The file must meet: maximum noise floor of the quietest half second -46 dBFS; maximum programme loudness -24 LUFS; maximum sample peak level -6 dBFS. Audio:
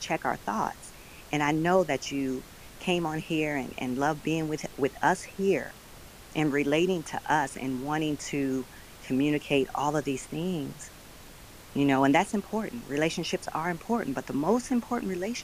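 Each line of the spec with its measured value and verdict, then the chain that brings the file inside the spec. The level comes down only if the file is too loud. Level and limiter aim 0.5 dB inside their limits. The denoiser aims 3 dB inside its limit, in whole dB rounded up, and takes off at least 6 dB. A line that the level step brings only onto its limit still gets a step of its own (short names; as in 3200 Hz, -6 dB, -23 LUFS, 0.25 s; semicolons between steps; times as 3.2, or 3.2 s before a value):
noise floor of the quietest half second -48 dBFS: OK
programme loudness -29.0 LUFS: OK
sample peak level -9.0 dBFS: OK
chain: none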